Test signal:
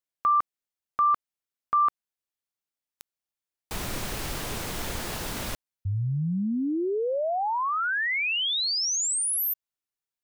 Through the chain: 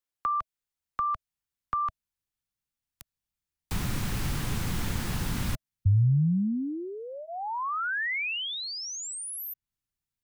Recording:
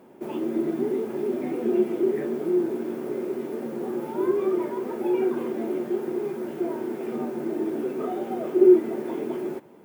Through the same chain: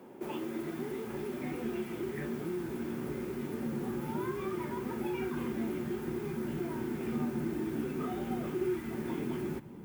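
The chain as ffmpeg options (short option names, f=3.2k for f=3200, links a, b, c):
-filter_complex "[0:a]acrossover=split=110|960|2200[a][b][c][d];[a]acompressor=threshold=-49dB:ratio=4[e];[b]acompressor=threshold=-37dB:ratio=4[f];[c]acompressor=threshold=-32dB:ratio=4[g];[d]acompressor=threshold=-38dB:ratio=4[h];[e][f][g][h]amix=inputs=4:normalize=0,asubboost=boost=8:cutoff=170,bandreject=f=640:w=12"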